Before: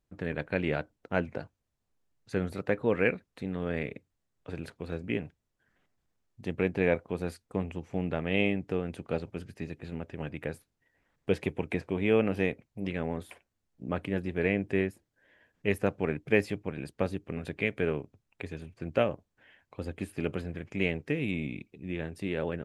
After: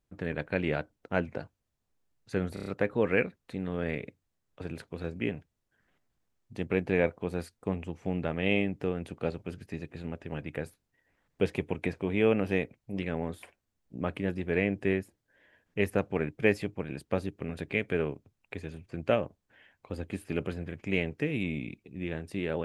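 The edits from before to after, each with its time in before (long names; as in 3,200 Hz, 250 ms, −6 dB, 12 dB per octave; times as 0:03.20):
0:02.54: stutter 0.03 s, 5 plays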